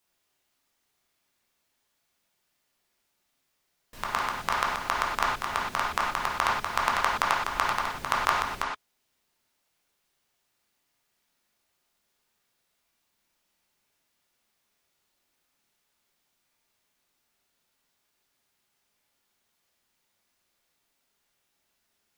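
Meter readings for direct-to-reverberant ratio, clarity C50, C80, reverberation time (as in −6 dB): −3.5 dB, 1.5 dB, 5.0 dB, non-exponential decay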